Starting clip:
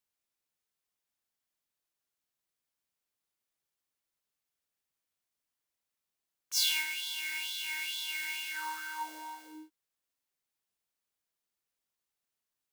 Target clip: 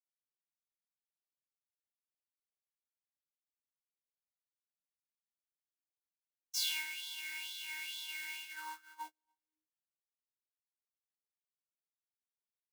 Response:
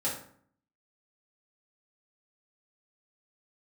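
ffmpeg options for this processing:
-af "agate=range=-44dB:threshold=-38dB:ratio=16:detection=peak,volume=-6.5dB"

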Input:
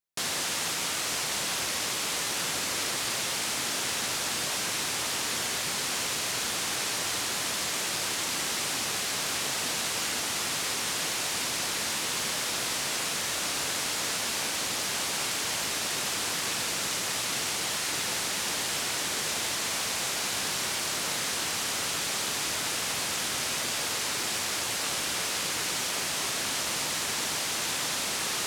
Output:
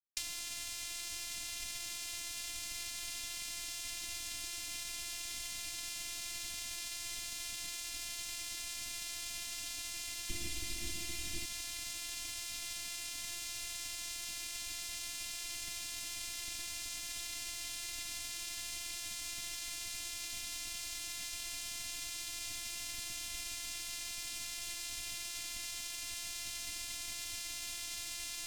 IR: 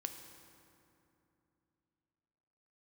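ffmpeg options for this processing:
-filter_complex "[0:a]asettb=1/sr,asplit=3[link_01][link_02][link_03];[link_01]atrim=end=10.294[link_04];[link_02]atrim=start=10.29:end=11.45,asetpts=PTS-STARTPTS,afade=type=in:duration=0.004:curve=qsin,afade=type=out:start_time=1.156:duration=0.004:curve=qsin,lowshelf=frequency=340:gain=12[link_05];[link_03]atrim=start=11.446[link_06];[link_04][link_05]acrossfade=duration=0.004:curve1=hsin:curve2=qsin[link_07];[link_07][link_06]acrossfade=duration=0.004:curve1=qsin:curve2=hsin,afftfilt=real='re*(1-between(b*sr/4096,230,1800))':imag='im*(1-between(b*sr/4096,230,1800))':win_size=4096:overlap=0.75,afftfilt=real='hypot(re,im)*cos(PI*b)':imag='0':win_size=512:overlap=0.75,acrossover=split=370[link_08][link_09];[link_09]acompressor=threshold=-46dB:ratio=6[link_10];[link_08][link_10]amix=inputs=2:normalize=0,aeval=exprs='sgn(val(0))*max(abs(val(0))-0.00119,0)':channel_layout=same,volume=9.5dB"

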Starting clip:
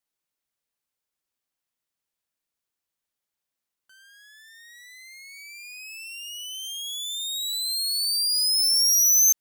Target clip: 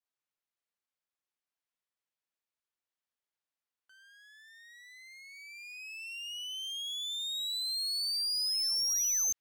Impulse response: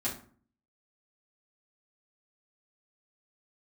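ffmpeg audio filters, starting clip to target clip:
-filter_complex "[0:a]asplit=2[link_01][link_02];[link_02]highpass=frequency=720:poles=1,volume=6dB,asoftclip=type=tanh:threshold=-12.5dB[link_03];[link_01][link_03]amix=inputs=2:normalize=0,lowpass=frequency=2900:poles=1,volume=-6dB,adynamicequalizer=threshold=0.00794:dfrequency=2700:dqfactor=0.77:tfrequency=2700:tqfactor=0.77:attack=5:release=100:ratio=0.375:range=2:mode=boostabove:tftype=bell,volume=-7dB"

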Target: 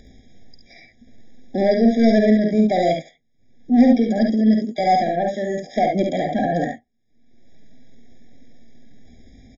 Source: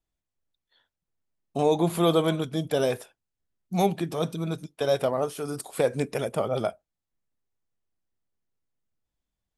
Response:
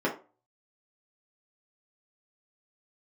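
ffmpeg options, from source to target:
-filter_complex "[0:a]equalizer=frequency=180:width=4.1:gain=13,acompressor=mode=upward:threshold=-30dB:ratio=2.5,aresample=11025,asoftclip=type=tanh:threshold=-16.5dB,aresample=44100,asetrate=58866,aresample=44100,atempo=0.749154,asplit=2[link_01][link_02];[link_02]aecho=0:1:51|70:0.473|0.562[link_03];[link_01][link_03]amix=inputs=2:normalize=0,afftfilt=real='re*eq(mod(floor(b*sr/1024/800),2),0)':imag='im*eq(mod(floor(b*sr/1024/800),2),0)':win_size=1024:overlap=0.75,volume=6.5dB"

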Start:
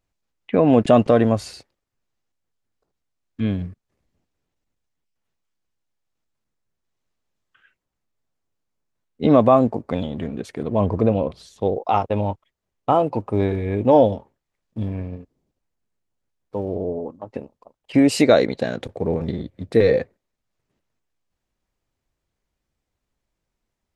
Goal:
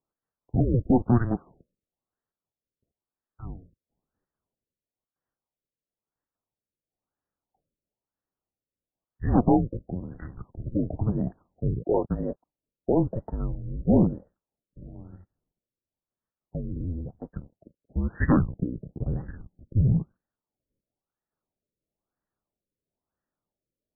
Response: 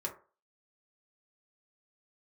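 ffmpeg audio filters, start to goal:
-af "highpass=frequency=370:width_type=q:width=0.5412,highpass=frequency=370:width_type=q:width=1.307,lowpass=frequency=3200:width_type=q:width=0.5176,lowpass=frequency=3200:width_type=q:width=0.7071,lowpass=frequency=3200:width_type=q:width=1.932,afreqshift=-350,aeval=exprs='clip(val(0),-1,0.178)':channel_layout=same,afftfilt=real='re*lt(b*sr/1024,590*pow(2000/590,0.5+0.5*sin(2*PI*1*pts/sr)))':imag='im*lt(b*sr/1024,590*pow(2000/590,0.5+0.5*sin(2*PI*1*pts/sr)))':win_size=1024:overlap=0.75,volume=-3dB"

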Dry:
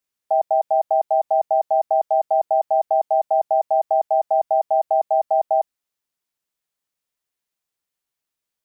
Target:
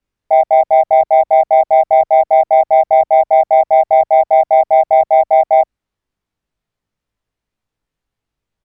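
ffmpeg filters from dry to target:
ffmpeg -i in.wav -filter_complex "[0:a]aemphasis=mode=reproduction:type=riaa,asplit=2[link_01][link_02];[link_02]adelay=19,volume=-2dB[link_03];[link_01][link_03]amix=inputs=2:normalize=0,acontrast=36" out.wav

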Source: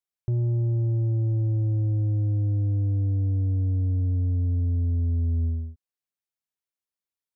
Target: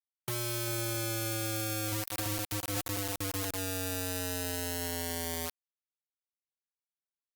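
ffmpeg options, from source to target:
ffmpeg -i in.wav -filter_complex "[0:a]highpass=frequency=130:width=0.5412,highpass=frequency=130:width=1.3066,asettb=1/sr,asplit=3[link_01][link_02][link_03];[link_01]atrim=end=1.494[link_04];[link_02]atrim=start=1.49:end=3.51,asetpts=PTS-STARTPTS,afade=type=in:duration=0.004:curve=qsin,afade=type=out:start_time=2.016:duration=0.004:curve=qsin,aecho=1:1:390|624|764.4|848.6|899.2:0.631|0.398|0.251|0.158|0.1,atrim=end_sample=89082[link_05];[link_03]atrim=start=3.506[link_06];[link_04][link_05]acrossfade=duration=0.004:curve1=hsin:curve2=qsin[link_07];[link_07][link_06]acrossfade=duration=0.004:curve1=qsin:curve2=hsin,acompressor=threshold=-34dB:ratio=16,asoftclip=type=tanh:threshold=-33dB,acrusher=bits=5:mix=0:aa=0.000001,crystalizer=i=4:c=0" -ar 48000 -c:a libopus -b:a 24k out.opus

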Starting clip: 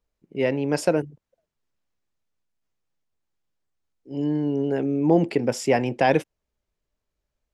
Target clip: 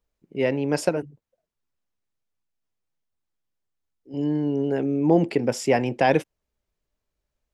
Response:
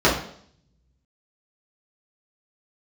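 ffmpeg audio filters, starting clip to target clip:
-filter_complex "[0:a]asettb=1/sr,asplit=3[link_01][link_02][link_03];[link_01]atrim=end=0.894[link_04];[link_02]atrim=start=0.89:end=4.14,asetpts=PTS-STARTPTS,afade=type=in:duration=0.004:curve=qsin,afade=type=out:start_time=3.246:duration=0.004:curve=qsin,flanger=delay=0.8:depth=9.6:regen=-44:speed=1.3:shape=sinusoidal[link_05];[link_03]atrim=start=4.136[link_06];[link_04][link_05]acrossfade=duration=0.004:curve1=hsin:curve2=qsin[link_07];[link_07][link_06]acrossfade=duration=0.004:curve1=qsin:curve2=hsin"

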